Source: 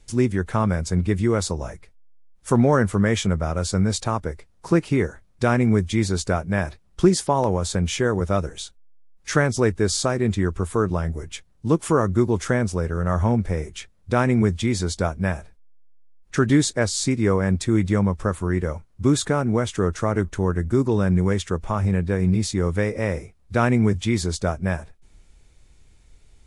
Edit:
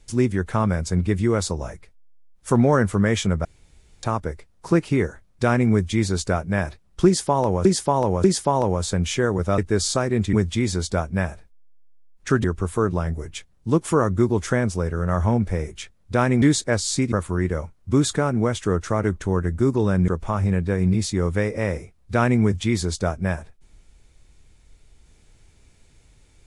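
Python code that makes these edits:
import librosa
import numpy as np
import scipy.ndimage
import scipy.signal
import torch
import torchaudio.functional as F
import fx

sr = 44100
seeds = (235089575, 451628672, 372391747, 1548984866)

y = fx.edit(x, sr, fx.room_tone_fill(start_s=3.45, length_s=0.58),
    fx.repeat(start_s=7.06, length_s=0.59, count=3),
    fx.cut(start_s=8.4, length_s=1.27),
    fx.move(start_s=14.4, length_s=2.11, to_s=10.42),
    fx.cut(start_s=17.21, length_s=1.03),
    fx.cut(start_s=21.2, length_s=0.29), tone=tone)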